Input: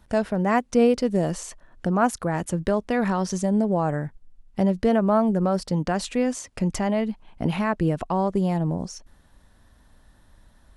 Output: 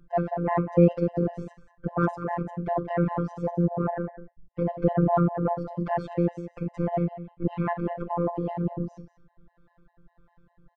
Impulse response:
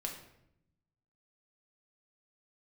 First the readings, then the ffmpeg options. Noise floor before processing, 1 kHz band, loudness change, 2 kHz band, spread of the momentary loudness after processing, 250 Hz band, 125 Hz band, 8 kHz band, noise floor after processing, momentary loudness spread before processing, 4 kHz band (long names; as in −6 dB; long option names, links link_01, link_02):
−57 dBFS, −3.0 dB, −3.5 dB, −8.5 dB, 12 LU, −4.5 dB, −0.5 dB, below −30 dB, −70 dBFS, 11 LU, below −15 dB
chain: -filter_complex "[0:a]lowpass=1300,acrossover=split=510[link_01][link_02];[link_01]aeval=exprs='val(0)*(1-0.5/2+0.5/2*cos(2*PI*1.6*n/s))':channel_layout=same[link_03];[link_02]aeval=exprs='val(0)*(1-0.5/2-0.5/2*cos(2*PI*1.6*n/s))':channel_layout=same[link_04];[link_03][link_04]amix=inputs=2:normalize=0,aecho=1:1:187:0.211,asplit=2[link_05][link_06];[1:a]atrim=start_sample=2205,atrim=end_sample=4410[link_07];[link_06][link_07]afir=irnorm=-1:irlink=0,volume=1.5dB[link_08];[link_05][link_08]amix=inputs=2:normalize=0,aeval=exprs='val(0)*sin(2*PI*61*n/s)':channel_layout=same,afftfilt=real='hypot(re,im)*cos(PI*b)':imag='0':win_size=1024:overlap=0.75,bandreject=frequency=60:width_type=h:width=6,bandreject=frequency=120:width_type=h:width=6,bandreject=frequency=180:width_type=h:width=6,bandreject=frequency=240:width_type=h:width=6,bandreject=frequency=300:width_type=h:width=6,bandreject=frequency=360:width_type=h:width=6,aeval=exprs='0.398*(cos(1*acos(clip(val(0)/0.398,-1,1)))-cos(1*PI/2))+0.00355*(cos(7*acos(clip(val(0)/0.398,-1,1)))-cos(7*PI/2))':channel_layout=same,afftfilt=real='re*gt(sin(2*PI*5*pts/sr)*(1-2*mod(floor(b*sr/1024/520),2)),0)':imag='im*gt(sin(2*PI*5*pts/sr)*(1-2*mod(floor(b*sr/1024/520),2)),0)':win_size=1024:overlap=0.75,volume=4dB"